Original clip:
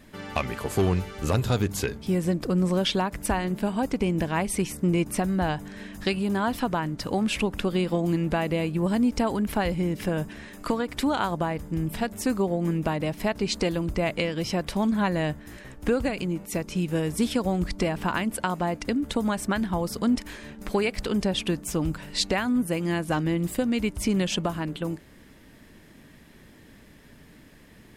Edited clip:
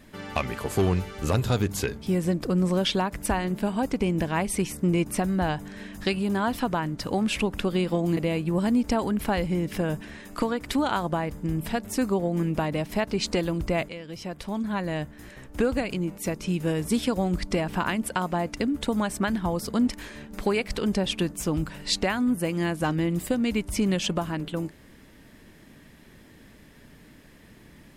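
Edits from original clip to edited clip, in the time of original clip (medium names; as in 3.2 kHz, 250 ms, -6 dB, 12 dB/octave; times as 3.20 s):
8.17–8.45 s: delete
14.17–15.97 s: fade in, from -12.5 dB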